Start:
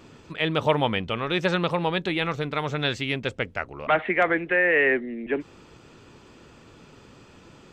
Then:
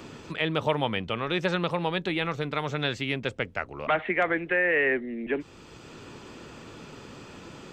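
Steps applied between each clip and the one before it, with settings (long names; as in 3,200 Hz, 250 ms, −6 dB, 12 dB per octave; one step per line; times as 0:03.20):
multiband upward and downward compressor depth 40%
level −3 dB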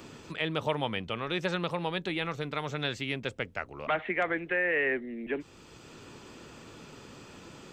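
high-shelf EQ 6,300 Hz +6.5 dB
level −4.5 dB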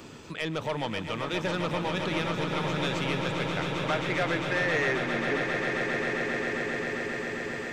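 soft clipping −24 dBFS, distortion −14 dB
echo that builds up and dies away 133 ms, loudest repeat 8, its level −9.5 dB
level +2 dB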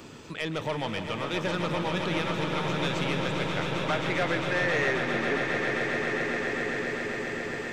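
feedback echo with a swinging delay time 162 ms, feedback 76%, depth 112 cents, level −12 dB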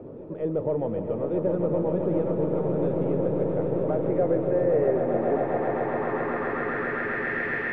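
hearing-aid frequency compression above 3,700 Hz 1.5 to 1
backwards echo 1,139 ms −18 dB
low-pass filter sweep 500 Hz → 1,800 Hz, 0:04.66–0:07.49
level +1.5 dB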